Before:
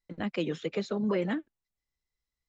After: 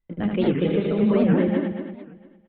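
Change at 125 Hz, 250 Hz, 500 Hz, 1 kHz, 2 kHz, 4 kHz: +13.5, +12.0, +10.0, +7.5, +5.0, +3.5 decibels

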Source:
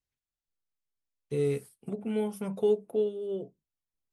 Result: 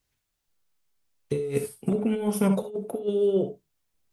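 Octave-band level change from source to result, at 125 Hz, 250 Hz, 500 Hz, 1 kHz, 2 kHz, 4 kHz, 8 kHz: +6.0, +8.0, +3.0, +7.5, +6.0, +5.5, +11.5 decibels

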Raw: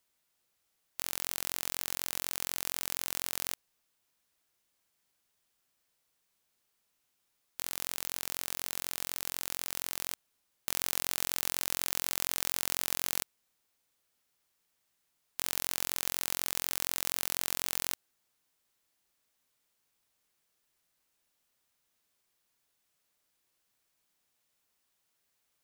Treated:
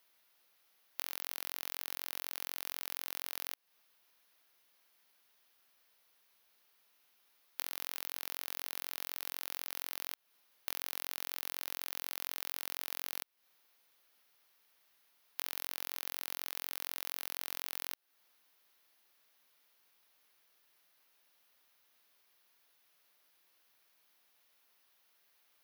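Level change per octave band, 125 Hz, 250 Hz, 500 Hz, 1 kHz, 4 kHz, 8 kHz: below −15 dB, −11.5 dB, −7.5 dB, −5.5 dB, −6.0 dB, −11.0 dB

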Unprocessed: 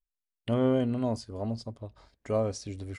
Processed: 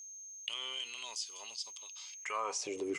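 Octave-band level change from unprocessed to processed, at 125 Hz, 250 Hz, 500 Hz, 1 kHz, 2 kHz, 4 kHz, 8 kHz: below −35 dB, −17.5 dB, −12.5 dB, −1.5 dB, +4.5 dB, +8.5 dB, +9.5 dB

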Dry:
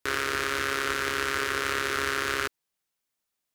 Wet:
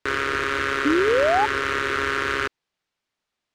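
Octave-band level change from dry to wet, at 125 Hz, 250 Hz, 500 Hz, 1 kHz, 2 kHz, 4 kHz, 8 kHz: +5.5, +12.0, +10.5, +7.0, +4.5, +1.0, −4.0 decibels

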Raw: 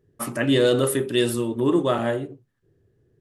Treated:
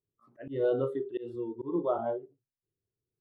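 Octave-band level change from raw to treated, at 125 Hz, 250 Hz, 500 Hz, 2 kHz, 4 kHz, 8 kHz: −15.5 dB, −13.5 dB, −9.0 dB, −21.0 dB, below −30 dB, below −40 dB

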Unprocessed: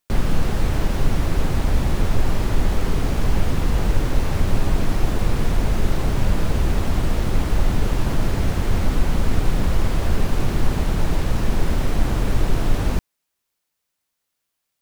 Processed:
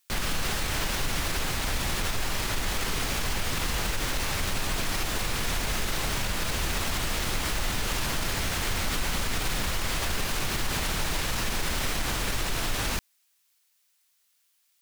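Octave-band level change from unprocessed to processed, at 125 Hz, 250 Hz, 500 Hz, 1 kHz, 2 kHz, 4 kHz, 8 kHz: −12.0, −11.0, −8.0, −2.5, +2.5, +5.5, +6.5 decibels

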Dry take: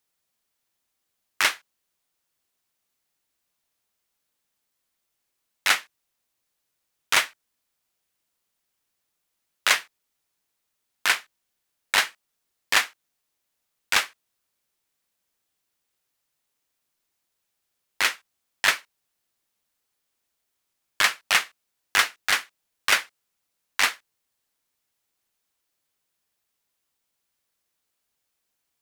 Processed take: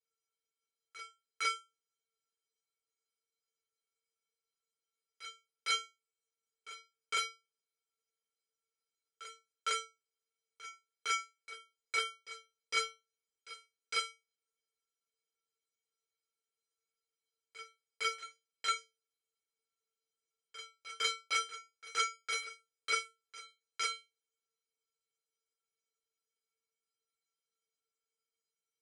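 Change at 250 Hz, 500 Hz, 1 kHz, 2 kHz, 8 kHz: below −20 dB, −9.0 dB, −9.0 dB, −15.0 dB, −12.5 dB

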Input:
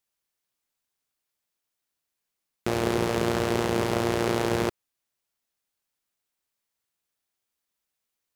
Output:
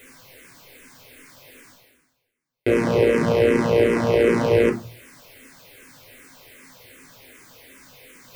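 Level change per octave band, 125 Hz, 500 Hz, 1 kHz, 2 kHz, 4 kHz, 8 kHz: +5.0, +9.5, +1.0, +6.0, 0.0, −2.0 decibels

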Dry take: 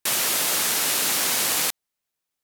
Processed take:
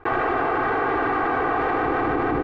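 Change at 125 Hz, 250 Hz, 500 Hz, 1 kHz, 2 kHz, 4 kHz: +11.5, +14.0, +12.5, +12.0, +3.5, −20.0 decibels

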